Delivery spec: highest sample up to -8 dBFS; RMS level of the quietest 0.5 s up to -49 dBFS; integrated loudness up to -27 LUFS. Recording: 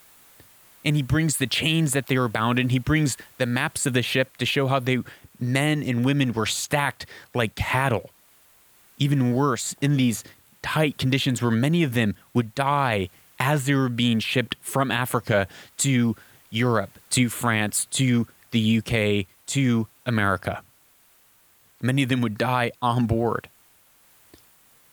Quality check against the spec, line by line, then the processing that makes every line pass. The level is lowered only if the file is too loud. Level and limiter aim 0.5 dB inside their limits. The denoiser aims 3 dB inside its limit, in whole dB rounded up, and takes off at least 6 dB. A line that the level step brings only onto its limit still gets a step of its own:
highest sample -5.5 dBFS: fail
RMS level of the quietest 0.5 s -59 dBFS: pass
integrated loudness -23.5 LUFS: fail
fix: trim -4 dB

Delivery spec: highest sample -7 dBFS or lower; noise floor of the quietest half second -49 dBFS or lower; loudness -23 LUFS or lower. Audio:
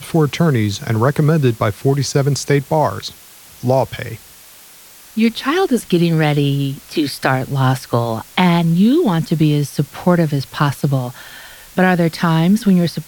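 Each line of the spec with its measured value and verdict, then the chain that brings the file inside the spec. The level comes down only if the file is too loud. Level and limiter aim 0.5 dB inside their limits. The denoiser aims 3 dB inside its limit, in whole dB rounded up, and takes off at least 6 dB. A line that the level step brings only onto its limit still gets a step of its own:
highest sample -2.5 dBFS: fail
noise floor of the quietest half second -42 dBFS: fail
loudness -16.5 LUFS: fail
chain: noise reduction 6 dB, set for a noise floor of -42 dBFS; trim -7 dB

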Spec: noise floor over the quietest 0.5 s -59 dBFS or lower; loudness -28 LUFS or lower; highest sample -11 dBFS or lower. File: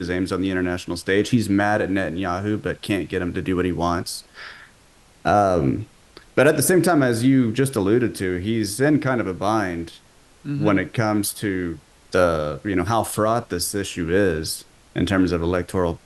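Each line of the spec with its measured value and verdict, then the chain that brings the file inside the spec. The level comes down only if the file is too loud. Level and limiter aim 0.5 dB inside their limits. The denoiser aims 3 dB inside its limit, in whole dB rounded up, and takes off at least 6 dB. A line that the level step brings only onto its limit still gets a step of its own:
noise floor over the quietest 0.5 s -53 dBFS: fail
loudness -21.5 LUFS: fail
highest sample -5.0 dBFS: fail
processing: trim -7 dB

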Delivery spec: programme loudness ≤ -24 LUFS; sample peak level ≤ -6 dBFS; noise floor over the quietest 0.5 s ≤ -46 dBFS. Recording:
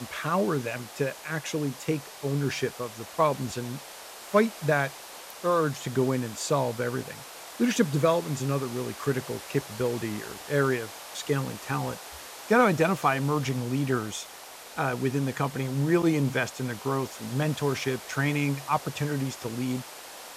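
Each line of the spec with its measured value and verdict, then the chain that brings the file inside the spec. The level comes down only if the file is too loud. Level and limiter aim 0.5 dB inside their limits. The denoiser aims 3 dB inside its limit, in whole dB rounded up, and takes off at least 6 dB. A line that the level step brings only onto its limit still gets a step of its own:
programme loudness -28.0 LUFS: pass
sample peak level -9.5 dBFS: pass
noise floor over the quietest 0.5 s -45 dBFS: fail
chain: noise reduction 6 dB, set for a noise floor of -45 dBFS

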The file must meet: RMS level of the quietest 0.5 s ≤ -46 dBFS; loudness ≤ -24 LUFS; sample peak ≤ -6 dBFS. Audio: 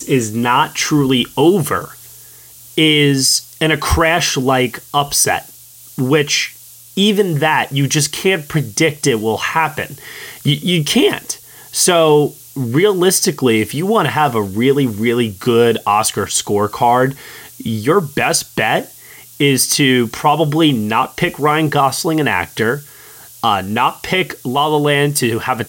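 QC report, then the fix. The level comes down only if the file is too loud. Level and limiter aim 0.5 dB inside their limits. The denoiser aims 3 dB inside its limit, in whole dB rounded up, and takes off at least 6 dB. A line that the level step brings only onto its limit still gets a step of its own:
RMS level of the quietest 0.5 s -40 dBFS: fail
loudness -14.5 LUFS: fail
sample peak -1.5 dBFS: fail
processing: trim -10 dB

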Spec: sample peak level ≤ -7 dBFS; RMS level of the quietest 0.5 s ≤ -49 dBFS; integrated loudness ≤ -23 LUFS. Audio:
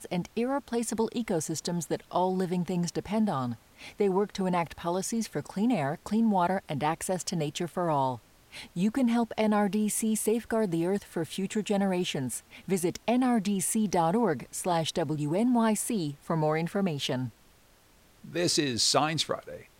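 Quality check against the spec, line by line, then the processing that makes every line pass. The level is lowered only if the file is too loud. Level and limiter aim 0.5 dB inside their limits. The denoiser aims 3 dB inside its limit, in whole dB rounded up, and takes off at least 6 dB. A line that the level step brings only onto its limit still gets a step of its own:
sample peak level -12.0 dBFS: pass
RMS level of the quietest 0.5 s -60 dBFS: pass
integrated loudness -29.0 LUFS: pass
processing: none needed

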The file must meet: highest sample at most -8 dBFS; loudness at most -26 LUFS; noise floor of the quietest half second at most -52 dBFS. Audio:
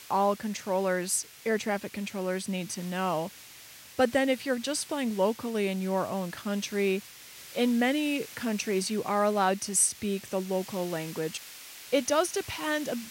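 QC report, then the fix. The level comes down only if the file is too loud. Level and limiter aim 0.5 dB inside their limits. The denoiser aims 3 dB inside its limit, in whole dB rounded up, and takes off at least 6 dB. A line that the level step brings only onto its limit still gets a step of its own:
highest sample -12.5 dBFS: pass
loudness -29.0 LUFS: pass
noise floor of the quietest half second -49 dBFS: fail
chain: noise reduction 6 dB, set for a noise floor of -49 dBFS

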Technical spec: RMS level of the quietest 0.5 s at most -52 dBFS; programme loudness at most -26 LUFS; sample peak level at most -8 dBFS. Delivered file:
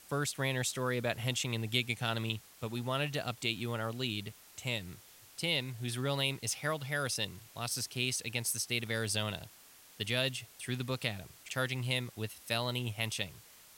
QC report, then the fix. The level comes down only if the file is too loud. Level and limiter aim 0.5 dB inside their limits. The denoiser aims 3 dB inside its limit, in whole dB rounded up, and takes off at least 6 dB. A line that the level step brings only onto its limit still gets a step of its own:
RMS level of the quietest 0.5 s -58 dBFS: pass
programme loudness -35.0 LUFS: pass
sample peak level -13.0 dBFS: pass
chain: none needed

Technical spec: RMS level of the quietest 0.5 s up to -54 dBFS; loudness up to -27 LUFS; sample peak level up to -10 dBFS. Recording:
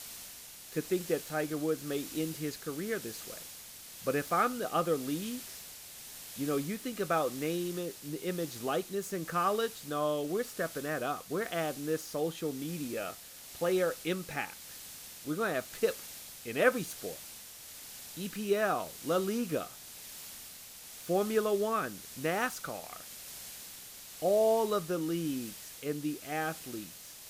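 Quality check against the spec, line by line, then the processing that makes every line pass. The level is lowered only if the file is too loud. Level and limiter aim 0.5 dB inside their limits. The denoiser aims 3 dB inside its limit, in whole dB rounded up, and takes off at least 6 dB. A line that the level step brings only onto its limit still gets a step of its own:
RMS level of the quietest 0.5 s -49 dBFS: fail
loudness -34.0 LUFS: pass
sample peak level -12.0 dBFS: pass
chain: noise reduction 8 dB, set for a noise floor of -49 dBFS

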